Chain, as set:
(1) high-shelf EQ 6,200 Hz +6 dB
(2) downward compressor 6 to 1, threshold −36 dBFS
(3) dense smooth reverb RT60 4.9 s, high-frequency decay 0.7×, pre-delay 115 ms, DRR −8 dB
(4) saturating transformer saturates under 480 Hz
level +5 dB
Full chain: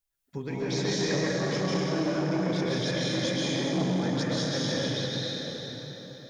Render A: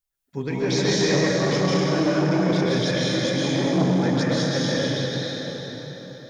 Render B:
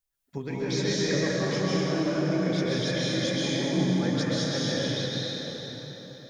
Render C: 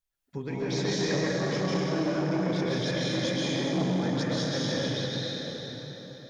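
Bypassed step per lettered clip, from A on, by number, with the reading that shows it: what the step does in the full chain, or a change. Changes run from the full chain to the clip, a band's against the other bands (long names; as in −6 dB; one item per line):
2, average gain reduction 5.0 dB
4, 1 kHz band −2.5 dB
1, 8 kHz band −2.0 dB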